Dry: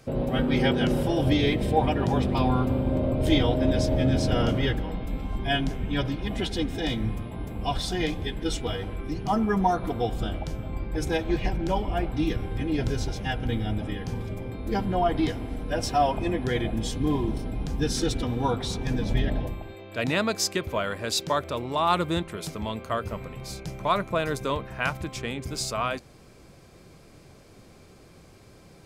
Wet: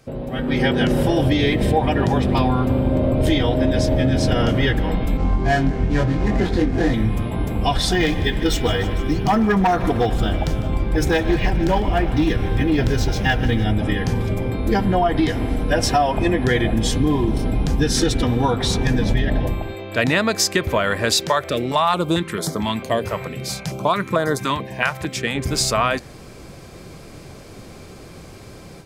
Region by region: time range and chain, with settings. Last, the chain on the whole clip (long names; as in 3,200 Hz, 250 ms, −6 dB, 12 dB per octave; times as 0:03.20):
0:05.17–0:06.94: running median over 15 samples + high-frequency loss of the air 54 metres + double-tracking delay 23 ms −2 dB
0:07.92–0:13.64: hard clipping −19.5 dBFS + delay with a high-pass on its return 151 ms, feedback 72%, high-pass 1,500 Hz, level −16 dB + linearly interpolated sample-rate reduction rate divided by 2×
0:21.27–0:25.35: high-pass filter 130 Hz + notch on a step sequencer 4.5 Hz 250–2,600 Hz
whole clip: downward compressor, threshold −26 dBFS; dynamic equaliser 1,800 Hz, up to +6 dB, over −57 dBFS, Q 5.5; automatic gain control gain up to 12 dB